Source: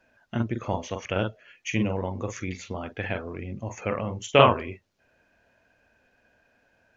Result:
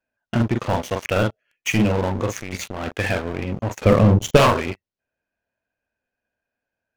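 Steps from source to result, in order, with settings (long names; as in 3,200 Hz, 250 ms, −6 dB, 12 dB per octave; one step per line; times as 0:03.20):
0:02.40–0:02.96: compressor whose output falls as the input rises −37 dBFS, ratio −1
leveller curve on the samples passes 5
0:03.81–0:04.37: low-shelf EQ 460 Hz +11.5 dB
level −8.5 dB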